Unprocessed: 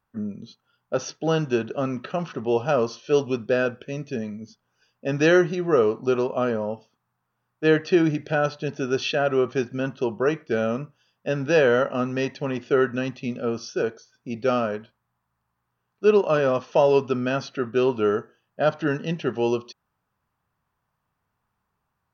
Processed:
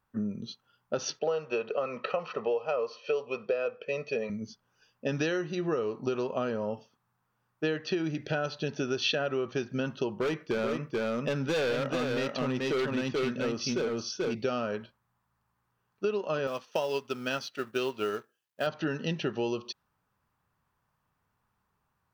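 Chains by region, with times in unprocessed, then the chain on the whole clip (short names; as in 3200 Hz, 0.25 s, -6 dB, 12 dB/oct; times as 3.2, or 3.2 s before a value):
1.19–4.3 speaker cabinet 290–4700 Hz, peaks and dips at 290 Hz -6 dB, 470 Hz +9 dB, 980 Hz +9 dB, 1700 Hz -3 dB, 2400 Hz +5 dB, 3500 Hz -8 dB + comb 1.6 ms, depth 51%
10.13–14.35 overloaded stage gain 20.5 dB + echo 0.435 s -3 dB
16.47–18.67 G.711 law mismatch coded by A + tilt +2 dB/oct + upward expander, over -33 dBFS
whole clip: bell 690 Hz -3 dB 0.2 oct; compressor 10:1, threshold -27 dBFS; dynamic EQ 4000 Hz, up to +6 dB, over -55 dBFS, Q 1.2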